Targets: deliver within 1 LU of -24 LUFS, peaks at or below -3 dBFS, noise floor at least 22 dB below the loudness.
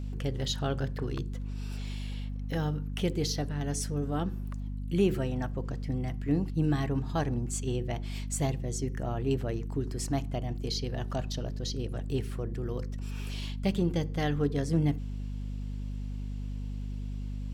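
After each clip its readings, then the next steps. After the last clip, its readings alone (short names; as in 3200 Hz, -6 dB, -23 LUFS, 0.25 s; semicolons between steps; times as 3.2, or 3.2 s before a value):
hum 50 Hz; harmonics up to 250 Hz; hum level -33 dBFS; loudness -33.0 LUFS; peak -14.5 dBFS; loudness target -24.0 LUFS
-> de-hum 50 Hz, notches 5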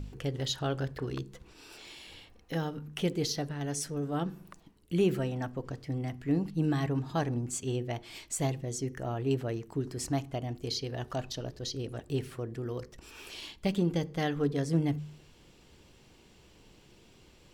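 hum none; loudness -33.5 LUFS; peak -16.0 dBFS; loudness target -24.0 LUFS
-> gain +9.5 dB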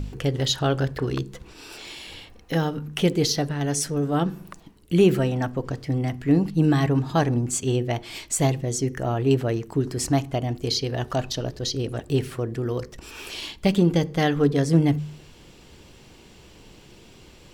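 loudness -24.0 LUFS; peak -6.5 dBFS; noise floor -50 dBFS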